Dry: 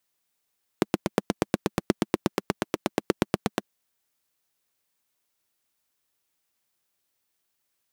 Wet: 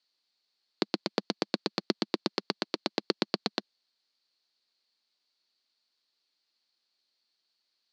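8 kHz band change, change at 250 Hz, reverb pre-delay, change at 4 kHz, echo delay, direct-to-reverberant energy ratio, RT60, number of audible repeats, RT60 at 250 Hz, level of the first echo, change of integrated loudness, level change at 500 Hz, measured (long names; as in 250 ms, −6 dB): −8.5 dB, −5.5 dB, no reverb audible, +6.0 dB, no echo audible, no reverb audible, no reverb audible, no echo audible, no reverb audible, no echo audible, −3.5 dB, −5.0 dB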